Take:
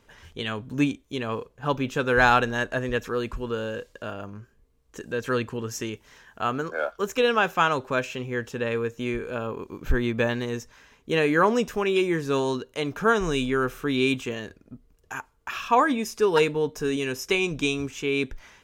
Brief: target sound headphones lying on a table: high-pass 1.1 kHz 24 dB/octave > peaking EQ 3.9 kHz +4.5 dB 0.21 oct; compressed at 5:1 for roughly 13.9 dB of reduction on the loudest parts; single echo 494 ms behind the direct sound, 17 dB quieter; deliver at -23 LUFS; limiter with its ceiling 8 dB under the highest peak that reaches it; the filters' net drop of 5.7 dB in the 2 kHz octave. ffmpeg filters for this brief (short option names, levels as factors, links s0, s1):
-af "equalizer=f=2000:t=o:g=-8,acompressor=threshold=0.0251:ratio=5,alimiter=level_in=1.68:limit=0.0631:level=0:latency=1,volume=0.596,highpass=f=1100:w=0.5412,highpass=f=1100:w=1.3066,equalizer=f=3900:t=o:w=0.21:g=4.5,aecho=1:1:494:0.141,volume=13.3"